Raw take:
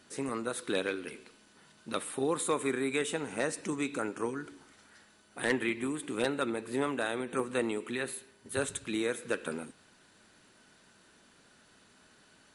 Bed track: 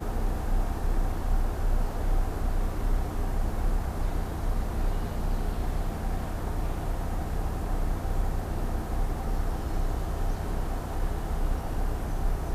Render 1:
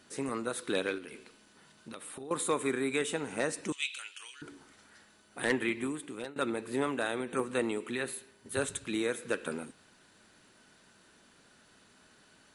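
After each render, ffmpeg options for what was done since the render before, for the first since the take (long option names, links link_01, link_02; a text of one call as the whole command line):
ffmpeg -i in.wav -filter_complex "[0:a]asettb=1/sr,asplit=3[link_01][link_02][link_03];[link_01]atrim=end=0.984[link_04];[link_02]atrim=start=0.98:end=2.31,asetpts=PTS-STARTPTS,afade=type=in:duration=0.004:curve=qsin,afade=type=out:start_time=1.326:duration=0.004:curve=qsin,acompressor=threshold=-41dB:ratio=6:attack=3.2:release=140:knee=1:detection=peak[link_05];[link_03]atrim=start=2.306[link_06];[link_04][link_05]acrossfade=duration=0.004:curve1=hsin:curve2=qsin[link_07];[link_07][link_06]acrossfade=duration=0.004:curve1=qsin:curve2=hsin,asettb=1/sr,asplit=3[link_08][link_09][link_10];[link_08]atrim=end=3.724[link_11];[link_09]atrim=start=3.72:end=4.42,asetpts=PTS-STARTPTS,afade=type=in:duration=0.004:curve=qsin,afade=type=out:start_time=0.696:duration=0.004:curve=qsin,highpass=frequency=3000:width_type=q:width=6.4[link_12];[link_10]atrim=start=4.416[link_13];[link_11][link_12]acrossfade=duration=0.004:curve1=hsin:curve2=qsin[link_14];[link_14][link_13]acrossfade=duration=0.004:curve1=qsin:curve2=hsin,asplit=2[link_15][link_16];[link_15]atrim=end=6.36,asetpts=PTS-STARTPTS,afade=type=out:start_time=5.82:duration=0.54:silence=0.105925[link_17];[link_16]atrim=start=6.36,asetpts=PTS-STARTPTS,afade=type=in:duration=0.004:curve=hsin:silence=0.105925[link_18];[link_17][link_18]concat=n=2:v=0:a=1" out.wav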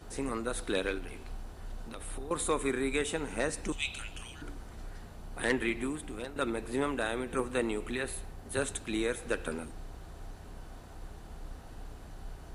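ffmpeg -i in.wav -i bed.wav -filter_complex "[1:a]volume=-16.5dB[link_01];[0:a][link_01]amix=inputs=2:normalize=0" out.wav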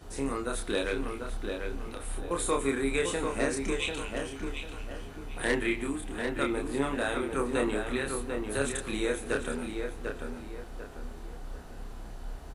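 ffmpeg -i in.wav -filter_complex "[0:a]asplit=2[link_01][link_02];[link_02]adelay=29,volume=-3dB[link_03];[link_01][link_03]amix=inputs=2:normalize=0,asplit=2[link_04][link_05];[link_05]adelay=744,lowpass=frequency=2900:poles=1,volume=-5dB,asplit=2[link_06][link_07];[link_07]adelay=744,lowpass=frequency=2900:poles=1,volume=0.36,asplit=2[link_08][link_09];[link_09]adelay=744,lowpass=frequency=2900:poles=1,volume=0.36,asplit=2[link_10][link_11];[link_11]adelay=744,lowpass=frequency=2900:poles=1,volume=0.36[link_12];[link_04][link_06][link_08][link_10][link_12]amix=inputs=5:normalize=0" out.wav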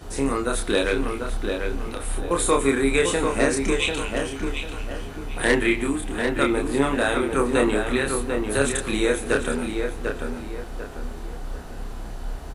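ffmpeg -i in.wav -af "volume=8.5dB" out.wav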